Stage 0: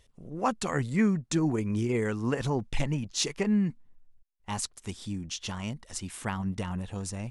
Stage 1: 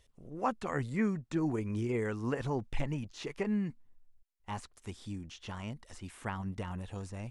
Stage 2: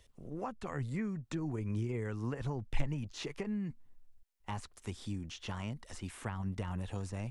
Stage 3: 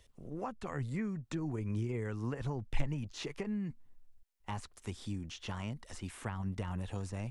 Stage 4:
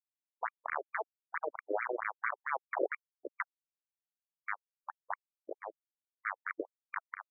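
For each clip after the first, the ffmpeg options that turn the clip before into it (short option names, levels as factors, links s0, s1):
-filter_complex "[0:a]acrossover=split=2600[s0][s1];[s1]acompressor=threshold=0.00355:ratio=4:attack=1:release=60[s2];[s0][s2]amix=inputs=2:normalize=0,equalizer=f=180:t=o:w=0.69:g=-4,volume=0.631"
-filter_complex "[0:a]acrossover=split=130[s0][s1];[s1]acompressor=threshold=0.00891:ratio=5[s2];[s0][s2]amix=inputs=2:normalize=0,volume=1.41"
-af anull
-af "acrusher=bits=4:mix=0:aa=0.000001,afftfilt=real='re*between(b*sr/1024,420*pow(1700/420,0.5+0.5*sin(2*PI*4.5*pts/sr))/1.41,420*pow(1700/420,0.5+0.5*sin(2*PI*4.5*pts/sr))*1.41)':imag='im*between(b*sr/1024,420*pow(1700/420,0.5+0.5*sin(2*PI*4.5*pts/sr))/1.41,420*pow(1700/420,0.5+0.5*sin(2*PI*4.5*pts/sr))*1.41)':win_size=1024:overlap=0.75,volume=3.35"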